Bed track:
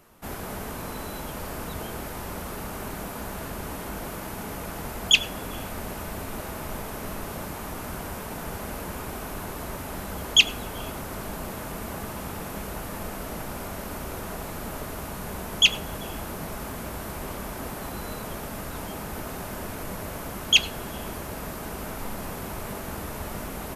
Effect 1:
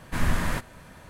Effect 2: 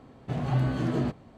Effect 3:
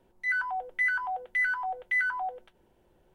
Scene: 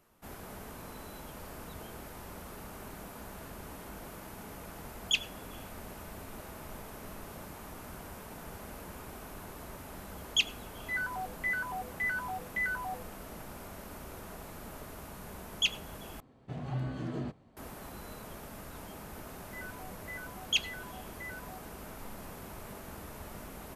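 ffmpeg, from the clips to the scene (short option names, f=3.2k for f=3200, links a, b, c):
-filter_complex "[3:a]asplit=2[a][b];[0:a]volume=-11dB,asplit=2[c][d];[c]atrim=end=16.204[e];[2:a]atrim=end=1.37,asetpts=PTS-STARTPTS,volume=-9.5dB[f];[d]atrim=start=17.566[g];[a]atrim=end=3.14,asetpts=PTS-STARTPTS,volume=-6dB,afade=t=in:d=0.004:c=hsin,afade=t=out:st=3.136:d=0.004:c=hsin,adelay=10650[h];[b]atrim=end=3.14,asetpts=PTS-STARTPTS,volume=-18dB,afade=t=in:d=0.004:c=hsin,afade=t=out:st=3.136:d=0.004:c=hsin,adelay=19290[i];[e][f]acrossfade=d=0.004:c1=hsin:c2=hsin[j];[j][g]acrossfade=d=0.004:c1=hsin:c2=hsin[k];[k][h][i]amix=inputs=3:normalize=0"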